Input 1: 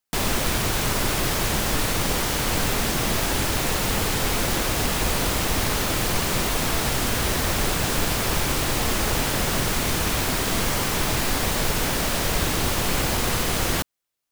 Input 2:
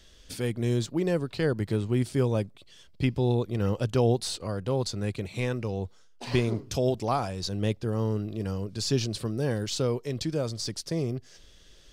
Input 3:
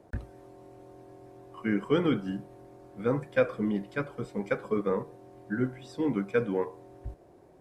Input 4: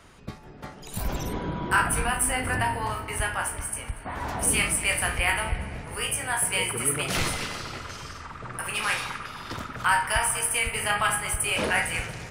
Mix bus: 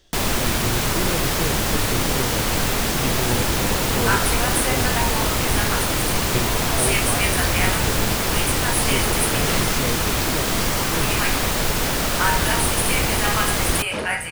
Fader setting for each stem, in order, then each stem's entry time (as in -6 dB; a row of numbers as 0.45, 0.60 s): +2.0, -2.5, -10.5, +0.5 dB; 0.00, 0.00, 0.00, 2.35 s